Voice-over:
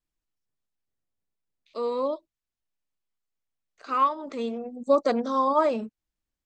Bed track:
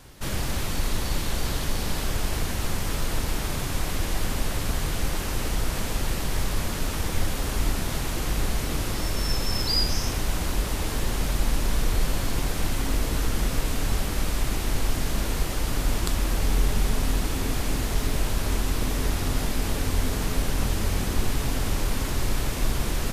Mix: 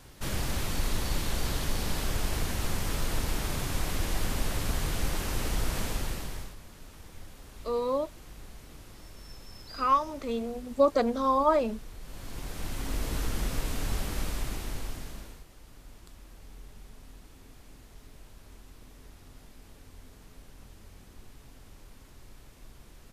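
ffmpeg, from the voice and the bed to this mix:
-filter_complex "[0:a]adelay=5900,volume=-1.5dB[a];[1:a]volume=12dB,afade=t=out:st=5.83:d=0.73:silence=0.125893,afade=t=in:st=12.02:d=1.11:silence=0.16788,afade=t=out:st=14.19:d=1.25:silence=0.1[b];[a][b]amix=inputs=2:normalize=0"

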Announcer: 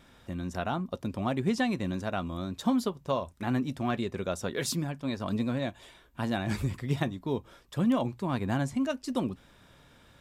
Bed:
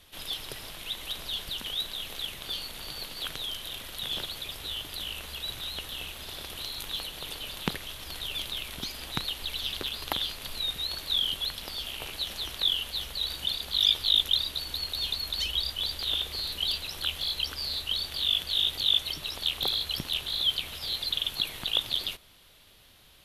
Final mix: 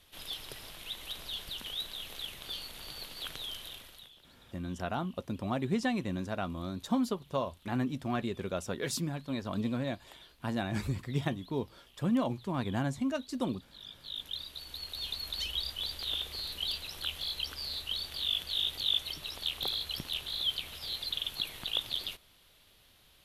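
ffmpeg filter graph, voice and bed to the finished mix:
-filter_complex "[0:a]adelay=4250,volume=-3dB[a];[1:a]volume=15dB,afade=t=out:st=3.6:d=0.52:silence=0.0944061,afade=t=in:st=13.92:d=1.38:silence=0.0944061[b];[a][b]amix=inputs=2:normalize=0"

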